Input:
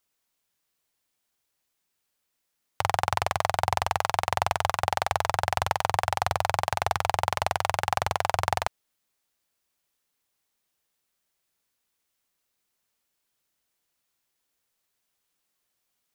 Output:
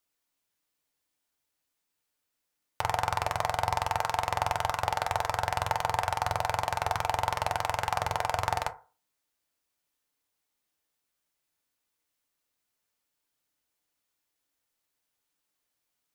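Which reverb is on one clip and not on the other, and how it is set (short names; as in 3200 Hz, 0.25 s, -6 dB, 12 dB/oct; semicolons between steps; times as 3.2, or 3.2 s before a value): FDN reverb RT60 0.36 s, low-frequency decay 0.85×, high-frequency decay 0.4×, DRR 6.5 dB; gain -4 dB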